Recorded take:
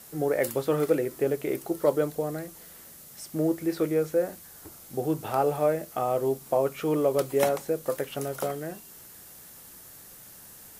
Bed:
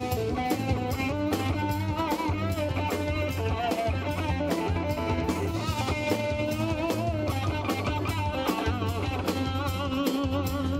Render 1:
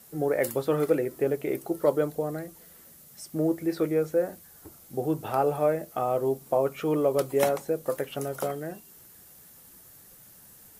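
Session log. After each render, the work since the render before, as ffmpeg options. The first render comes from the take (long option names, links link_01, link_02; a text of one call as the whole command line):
ffmpeg -i in.wav -af "afftdn=noise_reduction=6:noise_floor=-49" out.wav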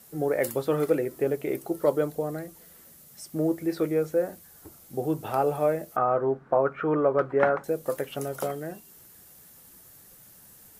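ffmpeg -i in.wav -filter_complex "[0:a]asettb=1/sr,asplit=3[link_01][link_02][link_03];[link_01]atrim=end=5.964[link_04];[link_02]atrim=start=5.96:end=7.64,asetpts=PTS-STARTPTS,afade=type=in:duration=0.004:curve=qsin,afade=type=out:start_time=1.676:duration=0.004:curve=qsin,lowpass=frequency=1500:width_type=q:width=4[link_05];[link_03]atrim=start=7.636[link_06];[link_04][link_05]acrossfade=duration=0.004:curve1=hsin:curve2=qsin[link_07];[link_07][link_06]acrossfade=duration=0.004:curve1=qsin:curve2=hsin" out.wav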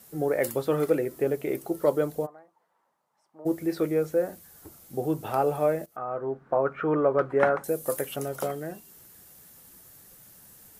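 ffmpeg -i in.wav -filter_complex "[0:a]asplit=3[link_01][link_02][link_03];[link_01]afade=type=out:start_time=2.25:duration=0.02[link_04];[link_02]bandpass=frequency=930:width_type=q:width=5.1,afade=type=in:start_time=2.25:duration=0.02,afade=type=out:start_time=3.45:duration=0.02[link_05];[link_03]afade=type=in:start_time=3.45:duration=0.02[link_06];[link_04][link_05][link_06]amix=inputs=3:normalize=0,asettb=1/sr,asplit=3[link_07][link_08][link_09];[link_07]atrim=end=7.304[link_10];[link_08]atrim=start=7.3:end=8.16,asetpts=PTS-STARTPTS,afade=type=in:duration=0.004:curve=qsin,afade=type=out:start_time=0.856:duration=0.004:curve=qsin,equalizer=frequency=11000:width=0.69:gain=11[link_11];[link_09]atrim=start=8.156[link_12];[link_10][link_11]acrossfade=duration=0.004:curve1=hsin:curve2=qsin[link_13];[link_13][link_12]acrossfade=duration=0.004:curve1=qsin:curve2=hsin,asplit=2[link_14][link_15];[link_14]atrim=end=5.86,asetpts=PTS-STARTPTS,afade=type=out:start_time=5.856:duration=0.004:curve=hsin:silence=0.16788[link_16];[link_15]atrim=start=5.86,asetpts=PTS-STARTPTS,afade=type=in:duration=0.93:silence=0.16788[link_17];[link_16][link_17]concat=n=2:v=0:a=1" out.wav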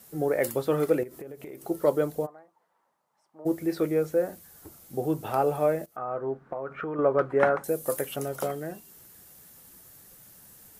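ffmpeg -i in.wav -filter_complex "[0:a]asettb=1/sr,asplit=3[link_01][link_02][link_03];[link_01]atrim=end=1.034[link_04];[link_02]atrim=start=1.03:end=1.65,asetpts=PTS-STARTPTS,afade=type=in:duration=0.004:curve=qsin,afade=type=out:start_time=0.616:duration=0.004:curve=qsin,acompressor=threshold=-37dB:ratio=12:attack=3.2:release=140:knee=1:detection=peak[link_05];[link_03]atrim=start=1.646[link_06];[link_04][link_05]acrossfade=duration=0.004:curve1=hsin:curve2=qsin[link_07];[link_07][link_06]acrossfade=duration=0.004:curve1=qsin:curve2=hsin,asettb=1/sr,asplit=3[link_08][link_09][link_10];[link_08]atrim=end=6.474[link_11];[link_09]atrim=start=6.47:end=6.99,asetpts=PTS-STARTPTS,afade=type=in:duration=0.004:curve=qsin,afade=type=out:start_time=0.516:duration=0.004:curve=qsin,acompressor=threshold=-29dB:ratio=10:attack=3.2:release=140:knee=1:detection=peak[link_12];[link_10]atrim=start=6.986[link_13];[link_11][link_12]acrossfade=duration=0.004:curve1=hsin:curve2=qsin[link_14];[link_14][link_13]acrossfade=duration=0.004:curve1=qsin:curve2=hsin" out.wav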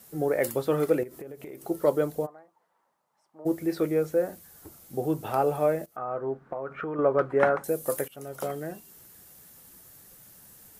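ffmpeg -i in.wav -filter_complex "[0:a]asplit=2[link_01][link_02];[link_01]atrim=end=8.08,asetpts=PTS-STARTPTS,afade=type=out:start_time=8.076:duration=0.004:curve=hsin:silence=0.105925[link_03];[link_02]atrim=start=8.08,asetpts=PTS-STARTPTS,afade=type=in:duration=0.49:silence=0.105925[link_04];[link_03][link_04]concat=n=2:v=0:a=1" out.wav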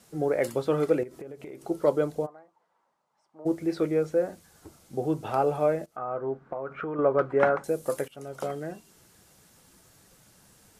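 ffmpeg -i in.wav -af "lowpass=7600,bandreject=frequency=1800:width=21" out.wav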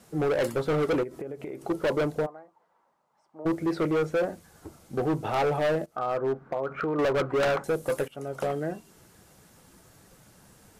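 ffmpeg -i in.wav -filter_complex "[0:a]asplit=2[link_01][link_02];[link_02]adynamicsmooth=sensitivity=8:basefreq=2900,volume=-3dB[link_03];[link_01][link_03]amix=inputs=2:normalize=0,volume=22dB,asoftclip=hard,volume=-22dB" out.wav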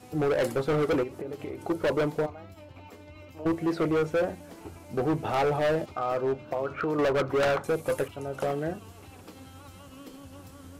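ffmpeg -i in.wav -i bed.wav -filter_complex "[1:a]volume=-19.5dB[link_01];[0:a][link_01]amix=inputs=2:normalize=0" out.wav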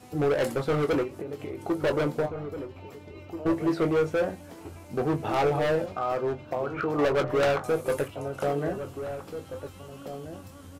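ffmpeg -i in.wav -filter_complex "[0:a]asplit=2[link_01][link_02];[link_02]adelay=21,volume=-9dB[link_03];[link_01][link_03]amix=inputs=2:normalize=0,asplit=2[link_04][link_05];[link_05]adelay=1633,volume=-10dB,highshelf=frequency=4000:gain=-36.7[link_06];[link_04][link_06]amix=inputs=2:normalize=0" out.wav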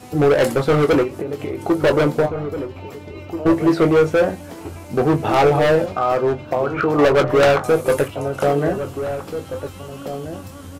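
ffmpeg -i in.wav -af "volume=10dB" out.wav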